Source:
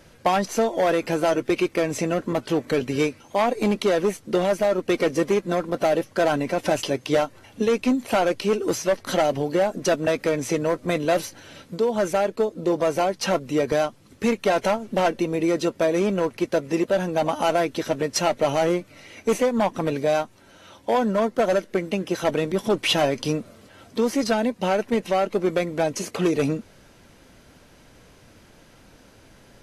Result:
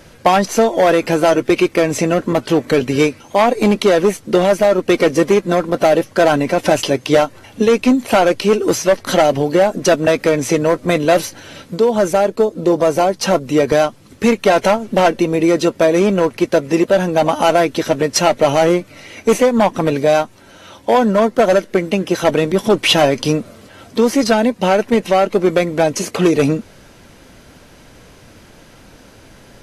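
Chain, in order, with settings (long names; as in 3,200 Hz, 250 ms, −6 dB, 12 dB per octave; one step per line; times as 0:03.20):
0:11.96–0:13.48: dynamic equaliser 2,300 Hz, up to −4 dB, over −37 dBFS, Q 0.8
level +8.5 dB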